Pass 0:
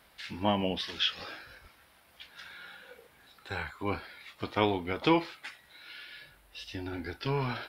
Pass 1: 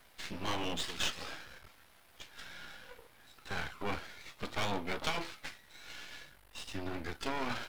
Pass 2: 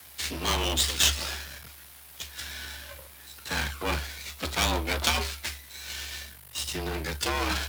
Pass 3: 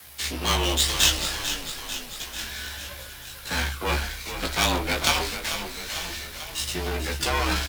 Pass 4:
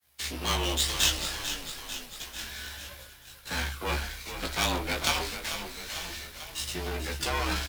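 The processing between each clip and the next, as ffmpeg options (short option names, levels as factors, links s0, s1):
-af "afftfilt=real='re*lt(hypot(re,im),0.178)':imag='im*lt(hypot(re,im),0.178)':win_size=1024:overlap=0.75,aeval=exprs='max(val(0),0)':c=same,volume=1.41"
-af "crystalizer=i=3:c=0,afreqshift=70,volume=2"
-filter_complex "[0:a]flanger=delay=16:depth=3.9:speed=0.28,asplit=9[s0][s1][s2][s3][s4][s5][s6][s7][s8];[s1]adelay=444,afreqshift=-32,volume=0.335[s9];[s2]adelay=888,afreqshift=-64,volume=0.207[s10];[s3]adelay=1332,afreqshift=-96,volume=0.129[s11];[s4]adelay=1776,afreqshift=-128,volume=0.0794[s12];[s5]adelay=2220,afreqshift=-160,volume=0.0495[s13];[s6]adelay=2664,afreqshift=-192,volume=0.0305[s14];[s7]adelay=3108,afreqshift=-224,volume=0.0191[s15];[s8]adelay=3552,afreqshift=-256,volume=0.0117[s16];[s0][s9][s10][s11][s12][s13][s14][s15][s16]amix=inputs=9:normalize=0,volume=2"
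-af "agate=range=0.0224:threshold=0.0178:ratio=3:detection=peak,volume=0.562"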